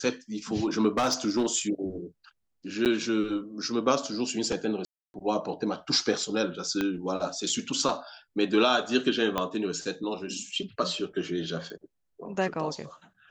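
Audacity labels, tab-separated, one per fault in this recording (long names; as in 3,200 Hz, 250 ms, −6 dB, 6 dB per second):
0.970000	1.470000	clipping −19.5 dBFS
2.850000	2.860000	drop-out 8.7 ms
4.850000	5.140000	drop-out 291 ms
6.810000	6.810000	click −15 dBFS
9.380000	9.380000	click −13 dBFS
11.700000	11.700000	click −28 dBFS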